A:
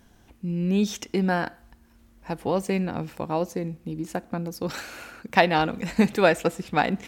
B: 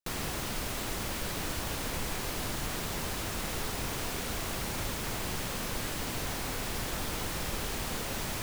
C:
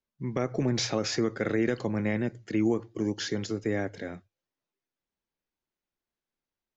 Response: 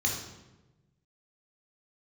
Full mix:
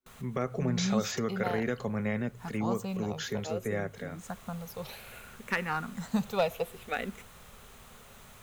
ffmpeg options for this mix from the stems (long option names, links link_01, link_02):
-filter_complex "[0:a]highshelf=frequency=9600:gain=10,asplit=2[link_01][link_02];[link_02]afreqshift=-0.59[link_03];[link_01][link_03]amix=inputs=2:normalize=1,adelay=150,volume=-7dB[link_04];[1:a]volume=-17.5dB[link_05];[2:a]volume=-2.5dB,asplit=2[link_06][link_07];[link_07]apad=whole_len=371593[link_08];[link_05][link_08]sidechaincompress=threshold=-46dB:ratio=5:attack=16:release=162[link_09];[link_04][link_09][link_06]amix=inputs=3:normalize=0,superequalizer=6b=0.251:10b=1.58:14b=0.562,aeval=exprs='clip(val(0),-1,0.1)':channel_layout=same"